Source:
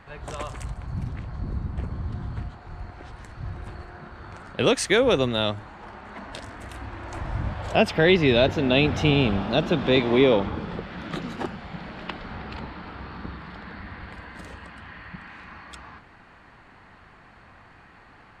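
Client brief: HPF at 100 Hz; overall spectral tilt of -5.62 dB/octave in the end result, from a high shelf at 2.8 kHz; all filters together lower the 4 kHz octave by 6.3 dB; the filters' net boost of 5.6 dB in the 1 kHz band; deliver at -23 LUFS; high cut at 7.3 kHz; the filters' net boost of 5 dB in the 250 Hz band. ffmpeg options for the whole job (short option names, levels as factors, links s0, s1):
-af "highpass=100,lowpass=7300,equalizer=f=250:t=o:g=6,equalizer=f=1000:t=o:g=8,highshelf=f=2800:g=-5,equalizer=f=4000:t=o:g=-4.5,volume=0.794"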